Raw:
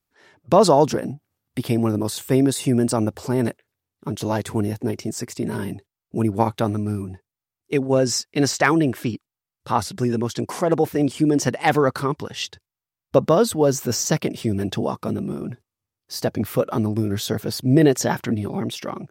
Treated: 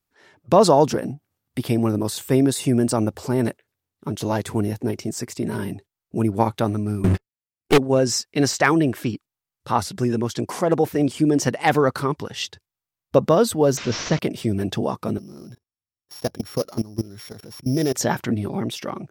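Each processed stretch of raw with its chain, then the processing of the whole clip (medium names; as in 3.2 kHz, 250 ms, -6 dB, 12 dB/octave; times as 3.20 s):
7.04–7.78 s: comb filter that takes the minimum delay 0.41 ms + waveshaping leveller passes 5
13.77–14.19 s: one-bit delta coder 32 kbps, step -26.5 dBFS + band-stop 840 Hz, Q 8.5
15.18–17.95 s: sorted samples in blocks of 8 samples + level held to a coarse grid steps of 20 dB
whole clip: none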